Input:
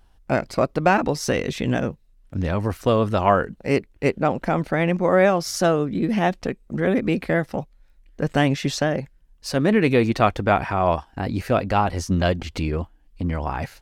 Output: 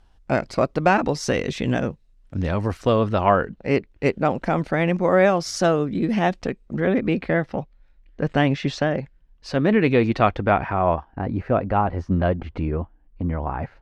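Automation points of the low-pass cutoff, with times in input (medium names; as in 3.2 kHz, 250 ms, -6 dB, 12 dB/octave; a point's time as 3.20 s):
2.71 s 7.8 kHz
3.19 s 4.1 kHz
3.72 s 4.1 kHz
4.25 s 7.7 kHz
6.36 s 7.7 kHz
6.99 s 3.8 kHz
10.21 s 3.8 kHz
11.12 s 1.5 kHz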